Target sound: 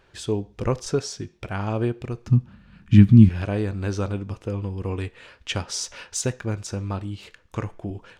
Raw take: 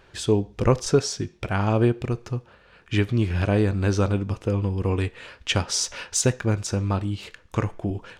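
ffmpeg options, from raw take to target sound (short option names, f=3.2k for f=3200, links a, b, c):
-filter_complex "[0:a]asettb=1/sr,asplit=3[a][b][c];[a]atrim=end=2.274[d];[b]atrim=start=2.27:end=3.29,asetpts=PTS-STARTPTS,afade=t=in:d=0.004:c=qsin,afade=t=out:st=1.016:d=0.004:c=qsin,lowshelf=f=310:t=q:w=3:g=13[e];[c]atrim=start=3.286[f];[d][e]acrossfade=d=0.004:c1=hsin:c2=qsin[g];[g][f]acrossfade=d=0.004:c1=qsin:c2=hsin,volume=-4.5dB"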